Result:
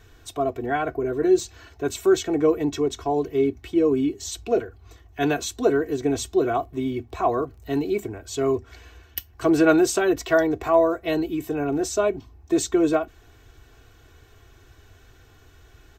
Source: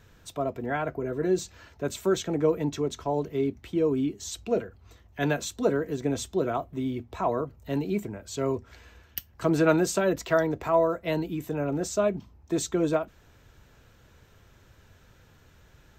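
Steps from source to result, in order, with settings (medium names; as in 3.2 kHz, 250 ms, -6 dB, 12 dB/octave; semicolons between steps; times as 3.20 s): comb 2.7 ms, depth 77%; 6.50–8.50 s: crackle 31 per s -48 dBFS; trim +2.5 dB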